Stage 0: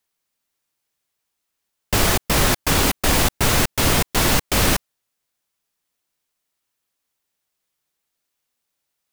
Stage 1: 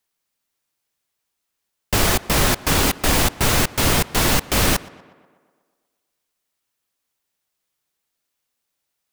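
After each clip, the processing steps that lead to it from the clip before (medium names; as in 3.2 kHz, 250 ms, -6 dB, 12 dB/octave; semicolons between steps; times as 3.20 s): tape echo 121 ms, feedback 64%, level -19.5 dB, low-pass 3 kHz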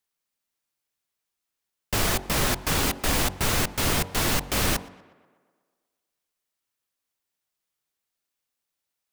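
de-hum 46.53 Hz, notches 22; trim -6 dB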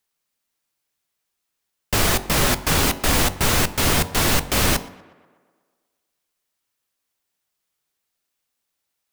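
feedback comb 81 Hz, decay 0.39 s, harmonics all, mix 40%; trim +8.5 dB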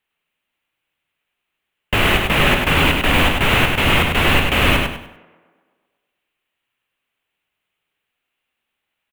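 resonant high shelf 3.8 kHz -11 dB, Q 3; on a send: feedback delay 99 ms, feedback 31%, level -4 dB; on the sum: trim +2.5 dB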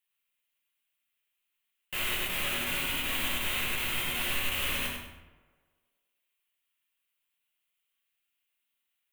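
pre-emphasis filter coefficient 0.9; peak limiter -23 dBFS, peak gain reduction 10 dB; simulated room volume 99 m³, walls mixed, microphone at 0.99 m; trim -2.5 dB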